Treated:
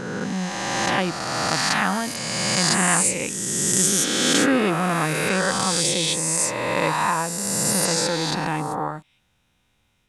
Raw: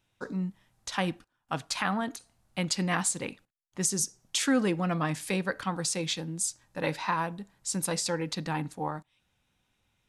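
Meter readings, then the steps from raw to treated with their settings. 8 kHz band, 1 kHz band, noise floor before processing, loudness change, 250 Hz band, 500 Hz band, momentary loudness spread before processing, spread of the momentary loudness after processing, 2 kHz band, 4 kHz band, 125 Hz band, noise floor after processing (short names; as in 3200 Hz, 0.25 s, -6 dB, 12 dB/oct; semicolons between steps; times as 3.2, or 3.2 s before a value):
+12.0 dB, +10.0 dB, -77 dBFS, +10.0 dB, +7.0 dB, +9.5 dB, 10 LU, 8 LU, +11.5 dB, +12.0 dB, +6.5 dB, -67 dBFS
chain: spectral swells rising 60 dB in 2.55 s; gain +3.5 dB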